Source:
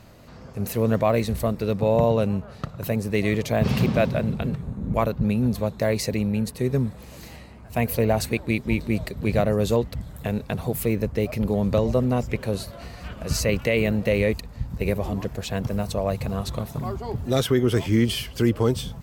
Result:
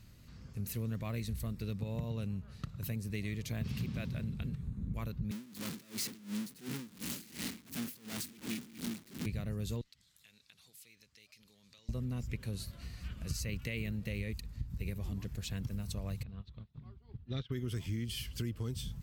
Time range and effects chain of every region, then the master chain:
0:05.31–0:09.26: sign of each sample alone + high-pass with resonance 240 Hz, resonance Q 2.4 + tremolo with a sine in dB 2.8 Hz, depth 23 dB
0:09.81–0:11.89: resonant band-pass 4,800 Hz, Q 1.1 + downward compressor 2 to 1, threshold −51 dBFS
0:16.23–0:17.52: Chebyshev low-pass filter 3,800 Hz, order 3 + expander for the loud parts 2.5 to 1, over −38 dBFS
whole clip: guitar amp tone stack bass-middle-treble 6-0-2; downward compressor 4 to 1, threshold −42 dBFS; level +7.5 dB

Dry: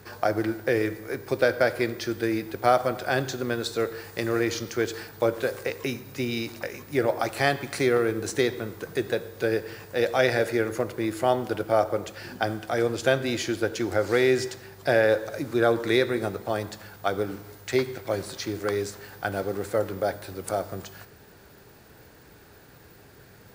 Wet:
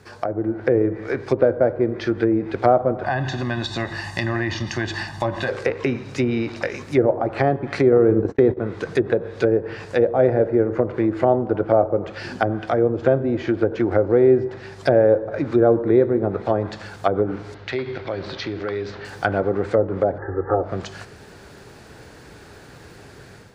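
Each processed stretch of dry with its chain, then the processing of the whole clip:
0:03.03–0:05.49: comb filter 1.1 ms, depth 94% + downward compressor 2.5 to 1, threshold −28 dBFS + parametric band 260 Hz −4 dB 0.25 octaves
0:07.92–0:08.57: noise gate −31 dBFS, range −57 dB + envelope flattener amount 50%
0:17.54–0:19.05: low-pass filter 4,100 Hz 24 dB per octave + downward compressor 2.5 to 1, threshold −34 dBFS
0:20.18–0:20.63: linear-phase brick-wall low-pass 2,000 Hz + comb filter 2.4 ms, depth 91%
whole clip: treble cut that deepens with the level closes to 650 Hz, closed at −22 dBFS; low-pass filter 9,400 Hz 12 dB per octave; automatic gain control gain up to 8.5 dB

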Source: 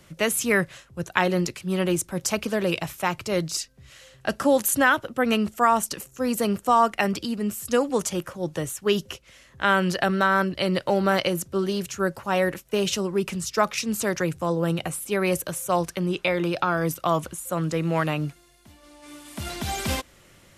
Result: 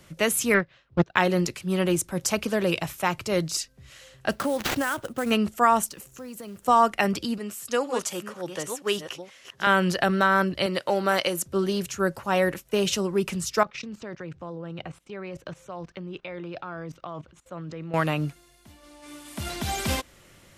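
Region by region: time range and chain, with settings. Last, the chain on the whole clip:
0:00.54–0:01.16: low-pass filter 4,500 Hz 24 dB per octave + transient designer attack +11 dB, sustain −12 dB + highs frequency-modulated by the lows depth 0.34 ms
0:04.31–0:05.31: downward compressor 5 to 1, threshold −22 dBFS + sample-rate reduction 9,600 Hz, jitter 20%
0:05.87–0:06.68: downward compressor 4 to 1, threshold −39 dBFS + log-companded quantiser 6 bits
0:07.38–0:09.67: delay that plays each chunk backwards 481 ms, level −7 dB + high-pass filter 570 Hz 6 dB per octave + high-shelf EQ 11,000 Hz −8 dB
0:10.66–0:11.46: high-pass filter 370 Hz 6 dB per octave + dynamic equaliser 8,600 Hz, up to +4 dB, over −43 dBFS, Q 1.1
0:13.63–0:17.94: high-frequency loss of the air 180 metres + output level in coarse steps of 18 dB
whole clip: no processing

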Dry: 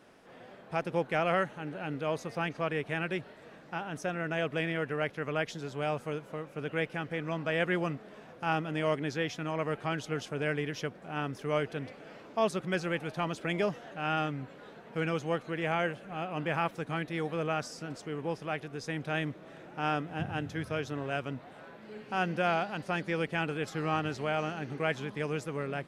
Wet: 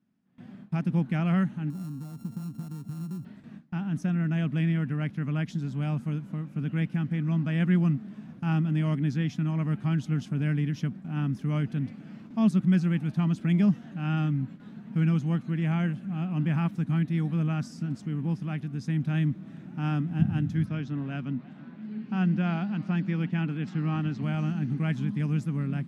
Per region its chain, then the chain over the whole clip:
0:01.70–0:03.25: samples sorted by size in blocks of 32 samples + parametric band 2,400 Hz −14 dB 2 octaves + downward compressor 8 to 1, threshold −41 dBFS
0:20.66–0:24.23: band-pass filter 160–4,800 Hz + feedback echo with a swinging delay time 323 ms, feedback 61%, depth 182 cents, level −22 dB
whole clip: high-pass filter 75 Hz; noise gate with hold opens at −41 dBFS; low shelf with overshoot 320 Hz +13.5 dB, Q 3; level −5 dB

